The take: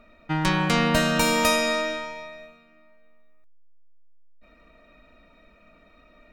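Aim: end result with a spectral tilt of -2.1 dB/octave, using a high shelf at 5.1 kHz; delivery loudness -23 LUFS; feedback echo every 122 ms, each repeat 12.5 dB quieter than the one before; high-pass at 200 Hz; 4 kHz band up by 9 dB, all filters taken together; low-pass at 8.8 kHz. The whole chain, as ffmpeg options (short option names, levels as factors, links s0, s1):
-af "highpass=200,lowpass=8800,equalizer=f=4000:t=o:g=8.5,highshelf=f=5100:g=6,aecho=1:1:122|244|366:0.237|0.0569|0.0137,volume=0.596"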